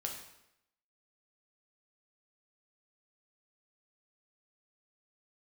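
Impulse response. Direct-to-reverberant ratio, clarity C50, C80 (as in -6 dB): 0.5 dB, 5.5 dB, 8.0 dB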